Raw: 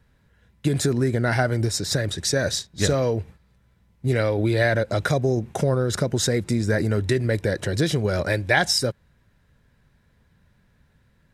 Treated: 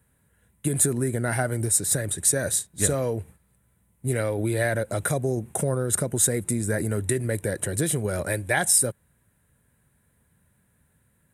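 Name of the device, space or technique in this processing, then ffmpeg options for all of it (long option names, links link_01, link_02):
budget condenser microphone: -af "highpass=62,highshelf=frequency=7000:width_type=q:width=3:gain=12,volume=-4dB"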